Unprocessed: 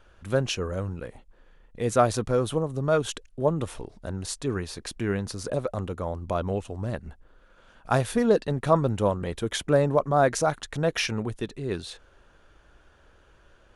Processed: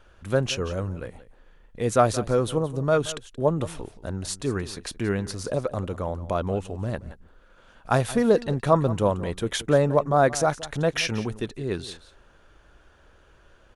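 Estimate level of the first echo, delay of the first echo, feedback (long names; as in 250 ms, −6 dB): −17.0 dB, 176 ms, repeats not evenly spaced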